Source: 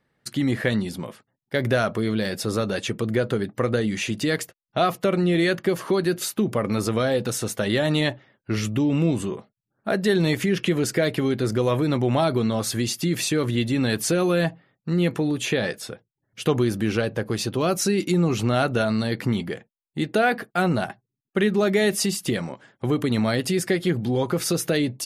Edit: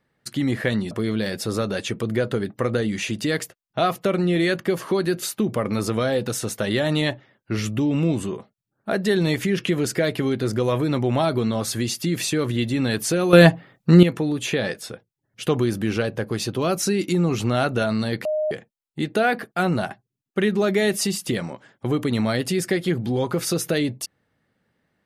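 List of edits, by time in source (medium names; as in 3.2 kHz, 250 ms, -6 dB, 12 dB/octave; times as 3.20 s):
0.91–1.90 s: delete
14.32–15.02 s: gain +11 dB
19.24–19.50 s: bleep 615 Hz -20 dBFS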